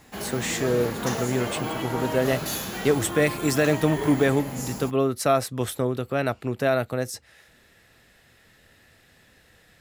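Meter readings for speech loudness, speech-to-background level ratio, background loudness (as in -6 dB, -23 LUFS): -25.5 LUFS, 5.5 dB, -31.0 LUFS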